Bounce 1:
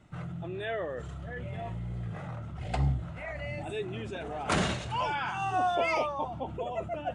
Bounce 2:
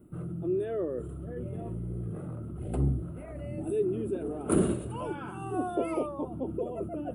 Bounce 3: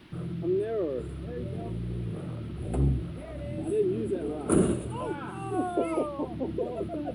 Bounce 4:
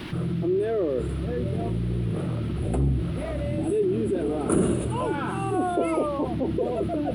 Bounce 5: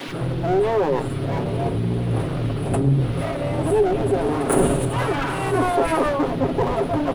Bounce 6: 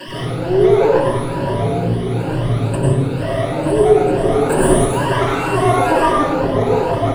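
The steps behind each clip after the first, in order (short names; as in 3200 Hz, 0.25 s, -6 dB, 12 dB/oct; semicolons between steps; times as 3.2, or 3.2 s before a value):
EQ curve 140 Hz 0 dB, 360 Hz +12 dB, 820 Hz -12 dB, 1300 Hz -6 dB, 1900 Hz -19 dB, 2800 Hz -14 dB, 6000 Hz -25 dB, 9900 Hz +13 dB
band noise 510–3700 Hz -61 dBFS; gain +2 dB
fast leveller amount 50%
minimum comb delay 7.3 ms; bands offset in time highs, lows 80 ms, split 180 Hz; gain +7 dB
moving spectral ripple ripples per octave 1.3, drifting +2.2 Hz, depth 21 dB; plate-style reverb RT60 0.75 s, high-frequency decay 0.85×, pre-delay 85 ms, DRR -3.5 dB; gain -4 dB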